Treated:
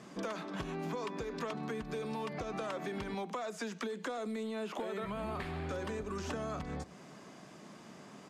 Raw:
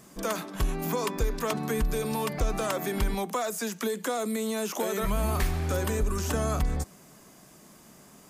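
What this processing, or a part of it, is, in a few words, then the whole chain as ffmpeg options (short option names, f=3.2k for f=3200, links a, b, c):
AM radio: -filter_complex "[0:a]asettb=1/sr,asplit=3[a][b][c];[a]atrim=end=4.434[d];[b]atrim=start=4.43:end=5.69,asetpts=PTS-STARTPTS,afade=t=in:d=0.004:c=qsin,afade=t=out:st=1.256:d=0.004:c=qsin,equalizer=f=5.9k:w=3:g=-12[e];[c]atrim=start=5.686[f];[d][e]acrossfade=d=0.004:c1=hsin:c2=qsin[g];[g][f]acrossfade=d=0.004:c1=qsin:c2=hsin,highpass=130,lowpass=4.3k,acompressor=threshold=-38dB:ratio=6,asoftclip=type=tanh:threshold=-30dB,asplit=2[h][i];[i]adelay=99.13,volume=-22dB,highshelf=f=4k:g=-2.23[j];[h][j]amix=inputs=2:normalize=0,volume=2.5dB"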